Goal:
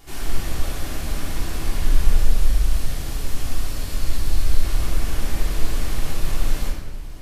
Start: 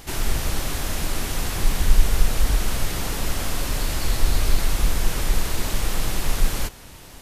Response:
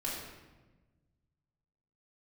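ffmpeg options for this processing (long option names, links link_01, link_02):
-filter_complex "[0:a]asettb=1/sr,asplit=3[link_01][link_02][link_03];[link_01]atrim=end=2.174[link_04];[link_02]atrim=start=2.17:end=4.63,asetpts=PTS-STARTPTS,afade=type=in:duration=0.004:curve=qsin,afade=type=out:start_time=2.456:duration=0.004:curve=qsin,acrossover=split=160|3000[link_05][link_06][link_07];[link_06]acompressor=threshold=-37dB:ratio=2[link_08];[link_05][link_08][link_07]amix=inputs=3:normalize=0[link_09];[link_03]atrim=start=4.626[link_10];[link_04][link_09]acrossfade=duration=0.004:curve1=hsin:curve2=qsin[link_11];[link_11][link_10]acrossfade=duration=0.004:curve1=qsin:curve2=hsin[link_12];[1:a]atrim=start_sample=2205[link_13];[link_12][link_13]afir=irnorm=-1:irlink=0,volume=-7dB"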